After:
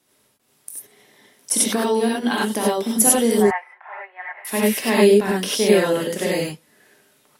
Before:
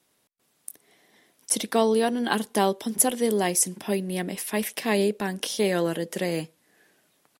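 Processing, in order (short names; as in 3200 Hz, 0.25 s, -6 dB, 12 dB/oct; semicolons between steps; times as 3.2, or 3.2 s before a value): 1.58–2.81 compressor 4:1, threshold -23 dBFS, peak gain reduction 7.5 dB; 3.4–4.45 elliptic band-pass 760–2000 Hz, stop band 60 dB; non-linear reverb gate 0.12 s rising, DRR -4.5 dB; gain +1.5 dB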